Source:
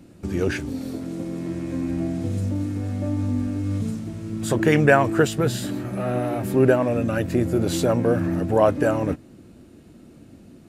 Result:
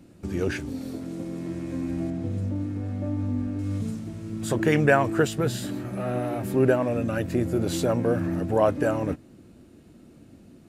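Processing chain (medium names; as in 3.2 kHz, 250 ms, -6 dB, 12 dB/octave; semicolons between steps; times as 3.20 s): 2.10–3.59 s: treble shelf 4 kHz -11 dB; trim -3.5 dB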